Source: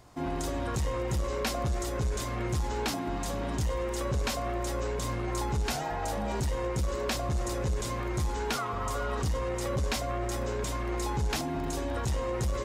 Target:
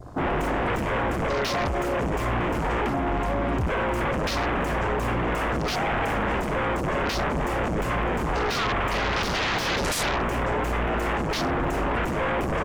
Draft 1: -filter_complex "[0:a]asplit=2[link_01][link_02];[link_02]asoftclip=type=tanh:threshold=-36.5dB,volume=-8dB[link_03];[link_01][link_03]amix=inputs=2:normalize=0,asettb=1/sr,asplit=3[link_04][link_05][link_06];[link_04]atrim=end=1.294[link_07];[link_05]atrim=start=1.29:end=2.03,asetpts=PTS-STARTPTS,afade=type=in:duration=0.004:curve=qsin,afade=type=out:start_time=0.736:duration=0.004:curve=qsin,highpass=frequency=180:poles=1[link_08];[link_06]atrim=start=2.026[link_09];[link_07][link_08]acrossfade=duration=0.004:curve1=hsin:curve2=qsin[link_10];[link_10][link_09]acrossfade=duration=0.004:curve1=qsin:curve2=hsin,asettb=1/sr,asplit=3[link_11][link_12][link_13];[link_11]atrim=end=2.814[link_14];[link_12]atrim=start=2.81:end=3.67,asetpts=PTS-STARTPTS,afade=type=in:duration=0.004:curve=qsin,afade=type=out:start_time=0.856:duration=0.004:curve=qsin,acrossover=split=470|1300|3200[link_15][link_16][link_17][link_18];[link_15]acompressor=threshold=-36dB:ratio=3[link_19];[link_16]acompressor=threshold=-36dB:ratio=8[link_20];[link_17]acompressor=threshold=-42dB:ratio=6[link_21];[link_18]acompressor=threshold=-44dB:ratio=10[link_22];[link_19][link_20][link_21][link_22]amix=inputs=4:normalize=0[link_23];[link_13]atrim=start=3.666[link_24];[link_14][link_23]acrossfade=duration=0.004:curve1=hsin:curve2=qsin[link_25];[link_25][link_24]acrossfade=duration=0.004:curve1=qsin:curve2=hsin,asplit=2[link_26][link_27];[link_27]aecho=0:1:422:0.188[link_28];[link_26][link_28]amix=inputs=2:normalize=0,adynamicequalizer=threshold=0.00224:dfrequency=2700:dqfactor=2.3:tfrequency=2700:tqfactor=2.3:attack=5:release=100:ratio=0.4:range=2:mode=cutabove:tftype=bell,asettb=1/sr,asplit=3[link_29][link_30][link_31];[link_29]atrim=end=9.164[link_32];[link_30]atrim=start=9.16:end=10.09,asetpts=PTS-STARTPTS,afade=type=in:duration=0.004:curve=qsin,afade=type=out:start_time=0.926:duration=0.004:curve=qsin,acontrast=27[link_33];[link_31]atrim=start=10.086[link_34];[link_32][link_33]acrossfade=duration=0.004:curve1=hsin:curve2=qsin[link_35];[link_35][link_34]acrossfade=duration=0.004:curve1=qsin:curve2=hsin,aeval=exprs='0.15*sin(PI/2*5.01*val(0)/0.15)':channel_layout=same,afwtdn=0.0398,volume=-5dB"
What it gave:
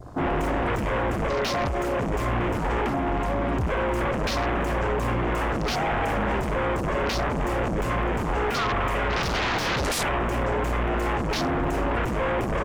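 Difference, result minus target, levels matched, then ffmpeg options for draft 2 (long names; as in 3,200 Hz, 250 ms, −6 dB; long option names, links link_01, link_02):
soft clipping: distortion +12 dB
-filter_complex "[0:a]asplit=2[link_01][link_02];[link_02]asoftclip=type=tanh:threshold=-25.5dB,volume=-8dB[link_03];[link_01][link_03]amix=inputs=2:normalize=0,asettb=1/sr,asplit=3[link_04][link_05][link_06];[link_04]atrim=end=1.294[link_07];[link_05]atrim=start=1.29:end=2.03,asetpts=PTS-STARTPTS,afade=type=in:duration=0.004:curve=qsin,afade=type=out:start_time=0.736:duration=0.004:curve=qsin,highpass=frequency=180:poles=1[link_08];[link_06]atrim=start=2.026[link_09];[link_07][link_08]acrossfade=duration=0.004:curve1=hsin:curve2=qsin[link_10];[link_10][link_09]acrossfade=duration=0.004:curve1=qsin:curve2=hsin,asettb=1/sr,asplit=3[link_11][link_12][link_13];[link_11]atrim=end=2.814[link_14];[link_12]atrim=start=2.81:end=3.67,asetpts=PTS-STARTPTS,afade=type=in:duration=0.004:curve=qsin,afade=type=out:start_time=0.856:duration=0.004:curve=qsin,acrossover=split=470|1300|3200[link_15][link_16][link_17][link_18];[link_15]acompressor=threshold=-36dB:ratio=3[link_19];[link_16]acompressor=threshold=-36dB:ratio=8[link_20];[link_17]acompressor=threshold=-42dB:ratio=6[link_21];[link_18]acompressor=threshold=-44dB:ratio=10[link_22];[link_19][link_20][link_21][link_22]amix=inputs=4:normalize=0[link_23];[link_13]atrim=start=3.666[link_24];[link_14][link_23]acrossfade=duration=0.004:curve1=hsin:curve2=qsin[link_25];[link_25][link_24]acrossfade=duration=0.004:curve1=qsin:curve2=hsin,asplit=2[link_26][link_27];[link_27]aecho=0:1:422:0.188[link_28];[link_26][link_28]amix=inputs=2:normalize=0,adynamicequalizer=threshold=0.00224:dfrequency=2700:dqfactor=2.3:tfrequency=2700:tqfactor=2.3:attack=5:release=100:ratio=0.4:range=2:mode=cutabove:tftype=bell,asettb=1/sr,asplit=3[link_29][link_30][link_31];[link_29]atrim=end=9.164[link_32];[link_30]atrim=start=9.16:end=10.09,asetpts=PTS-STARTPTS,afade=type=in:duration=0.004:curve=qsin,afade=type=out:start_time=0.926:duration=0.004:curve=qsin,acontrast=27[link_33];[link_31]atrim=start=10.086[link_34];[link_32][link_33]acrossfade=duration=0.004:curve1=hsin:curve2=qsin[link_35];[link_35][link_34]acrossfade=duration=0.004:curve1=qsin:curve2=hsin,aeval=exprs='0.15*sin(PI/2*5.01*val(0)/0.15)':channel_layout=same,afwtdn=0.0398,volume=-5dB"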